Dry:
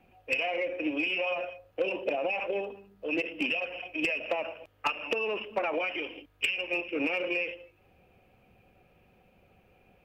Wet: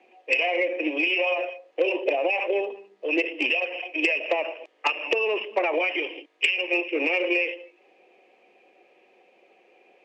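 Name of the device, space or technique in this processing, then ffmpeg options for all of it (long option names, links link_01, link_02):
phone speaker on a table: -af "highpass=frequency=350:width=0.5412,highpass=frequency=350:width=1.3066,equalizer=frequency=350:width_type=q:width=4:gain=6,equalizer=frequency=1400:width_type=q:width=4:gain=-10,equalizer=frequency=2000:width_type=q:width=4:gain=5,lowpass=frequency=7600:width=0.5412,lowpass=frequency=7600:width=1.3066,volume=6dB"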